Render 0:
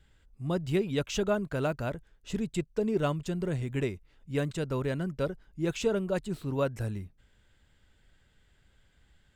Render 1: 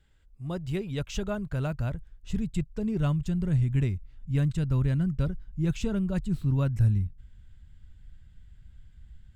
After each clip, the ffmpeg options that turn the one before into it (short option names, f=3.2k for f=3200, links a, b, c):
-af "asubboost=boost=11:cutoff=140,volume=-3.5dB"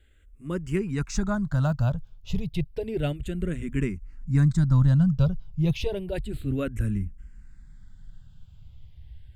-filter_complex "[0:a]asplit=2[a][b];[b]afreqshift=-0.31[c];[a][c]amix=inputs=2:normalize=1,volume=7dB"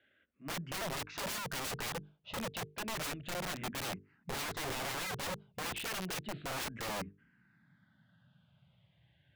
-af "highpass=f=150:w=0.5412,highpass=f=150:w=1.3066,equalizer=f=430:t=q:w=4:g=-7,equalizer=f=620:t=q:w=4:g=8,equalizer=f=1.6k:t=q:w=4:g=5,lowpass=f=3.6k:w=0.5412,lowpass=f=3.6k:w=1.3066,aeval=exprs='(mod(31.6*val(0)+1,2)-1)/31.6':c=same,bandreject=f=50:t=h:w=6,bandreject=f=100:t=h:w=6,bandreject=f=150:t=h:w=6,bandreject=f=200:t=h:w=6,bandreject=f=250:t=h:w=6,bandreject=f=300:t=h:w=6,bandreject=f=350:t=h:w=6,bandreject=f=400:t=h:w=6,bandreject=f=450:t=h:w=6,volume=-3.5dB"